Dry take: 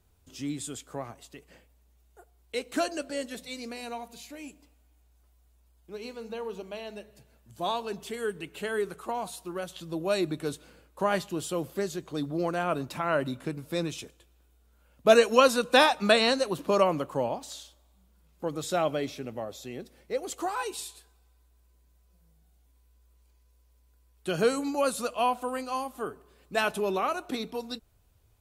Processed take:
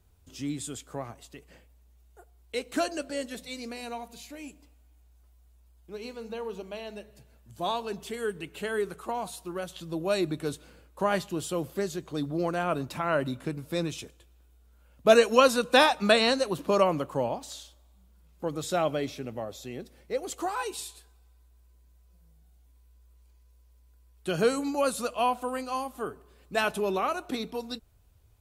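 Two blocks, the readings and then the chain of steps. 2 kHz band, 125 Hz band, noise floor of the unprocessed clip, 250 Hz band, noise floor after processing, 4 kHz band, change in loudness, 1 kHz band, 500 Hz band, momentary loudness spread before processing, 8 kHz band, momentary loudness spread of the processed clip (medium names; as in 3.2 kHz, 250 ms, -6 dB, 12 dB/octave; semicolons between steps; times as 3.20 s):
0.0 dB, +1.5 dB, -64 dBFS, +0.5 dB, -60 dBFS, 0.0 dB, 0.0 dB, 0.0 dB, 0.0 dB, 19 LU, 0.0 dB, 19 LU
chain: peaking EQ 61 Hz +4.5 dB 2 oct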